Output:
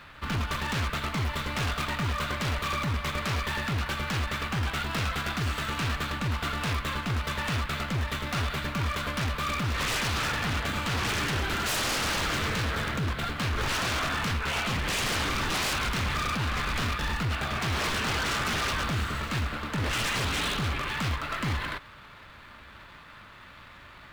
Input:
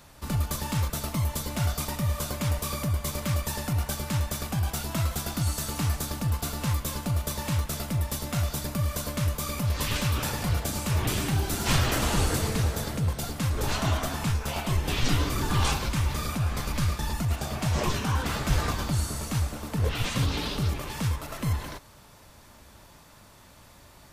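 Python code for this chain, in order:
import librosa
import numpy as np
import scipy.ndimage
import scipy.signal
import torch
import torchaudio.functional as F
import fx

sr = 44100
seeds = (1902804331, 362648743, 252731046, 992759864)

y = scipy.signal.medfilt(x, 9)
y = fx.band_shelf(y, sr, hz=2300.0, db=12.0, octaves=2.3)
y = 10.0 ** (-23.5 / 20.0) * (np.abs((y / 10.0 ** (-23.5 / 20.0) + 3.0) % 4.0 - 2.0) - 1.0)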